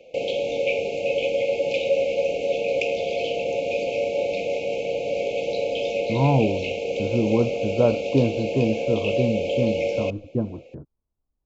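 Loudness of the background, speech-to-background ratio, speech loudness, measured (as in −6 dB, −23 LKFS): −25.0 LKFS, 0.0 dB, −25.0 LKFS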